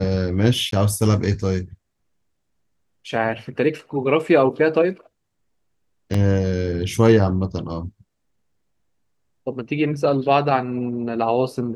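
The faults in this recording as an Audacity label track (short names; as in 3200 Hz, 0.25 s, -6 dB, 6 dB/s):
0.710000	0.720000	gap 13 ms
6.140000	6.140000	gap 4.2 ms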